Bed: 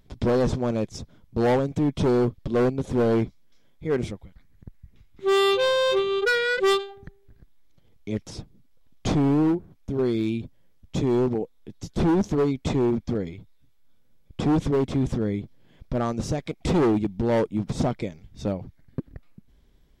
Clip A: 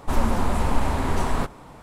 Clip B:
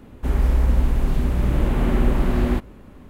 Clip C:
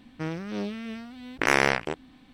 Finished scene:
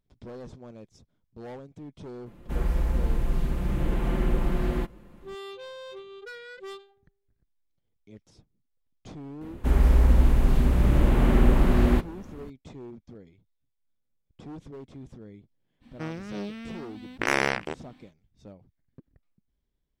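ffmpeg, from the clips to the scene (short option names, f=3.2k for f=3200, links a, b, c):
-filter_complex "[2:a]asplit=2[a][b];[0:a]volume=-20dB[c];[a]aecho=1:1:5.8:0.56,atrim=end=3.09,asetpts=PTS-STARTPTS,volume=-7.5dB,afade=t=in:d=0.004:c=hsin,afade=t=out:st=3.086:d=0.004:c=hsin,adelay=2260[d];[b]atrim=end=3.09,asetpts=PTS-STARTPTS,volume=-0.5dB,afade=t=in:d=0.004:c=hsin,afade=t=out:st=3.086:d=0.004:c=hsin,adelay=9410[e];[3:a]atrim=end=2.33,asetpts=PTS-STARTPTS,volume=-3dB,afade=t=in:d=0.05,afade=t=out:st=2.28:d=0.05,adelay=15800[f];[c][d][e][f]amix=inputs=4:normalize=0"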